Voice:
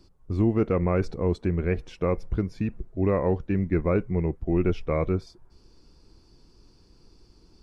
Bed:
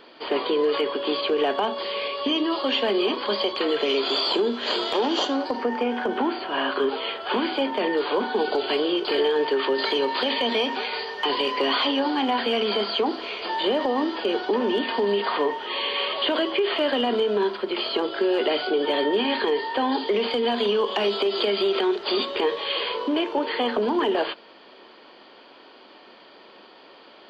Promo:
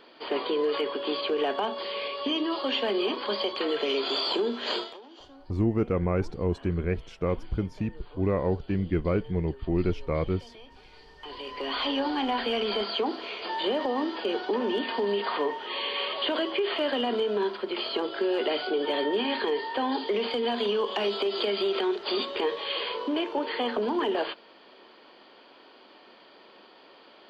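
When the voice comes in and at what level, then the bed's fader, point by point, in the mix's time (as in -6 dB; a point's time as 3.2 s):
5.20 s, -2.5 dB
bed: 4.78 s -4.5 dB
5.01 s -26.5 dB
10.86 s -26.5 dB
11.92 s -4.5 dB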